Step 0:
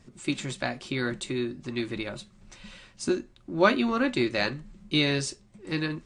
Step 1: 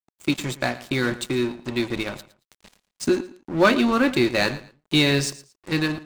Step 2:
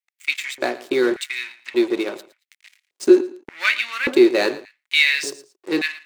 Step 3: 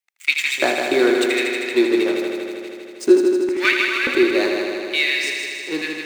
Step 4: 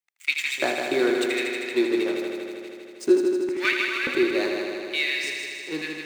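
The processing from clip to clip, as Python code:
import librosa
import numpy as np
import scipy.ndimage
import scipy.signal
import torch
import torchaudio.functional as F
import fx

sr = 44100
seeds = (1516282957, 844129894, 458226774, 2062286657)

y1 = fx.leveller(x, sr, passes=2)
y1 = np.sign(y1) * np.maximum(np.abs(y1) - 10.0 ** (-35.5 / 20.0), 0.0)
y1 = fx.echo_feedback(y1, sr, ms=113, feedback_pct=23, wet_db=-17.0)
y2 = fx.filter_lfo_highpass(y1, sr, shape='square', hz=0.86, low_hz=380.0, high_hz=2100.0, q=4.0)
y2 = F.gain(torch.from_numpy(y2), -1.0).numpy()
y3 = fx.rider(y2, sr, range_db=4, speed_s=0.5)
y3 = fx.echo_heads(y3, sr, ms=79, heads='first and second', feedback_pct=74, wet_db=-8)
y4 = fx.peak_eq(y3, sr, hz=150.0, db=6.5, octaves=0.42)
y4 = F.gain(torch.from_numpy(y4), -6.0).numpy()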